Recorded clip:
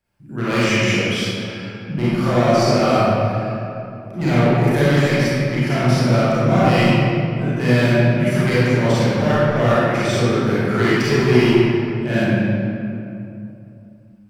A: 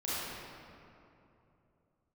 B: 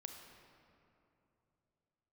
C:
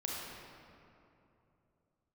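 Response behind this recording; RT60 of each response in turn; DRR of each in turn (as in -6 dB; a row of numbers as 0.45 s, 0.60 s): A; 2.9 s, 2.9 s, 2.9 s; -11.0 dB, 3.5 dB, -4.0 dB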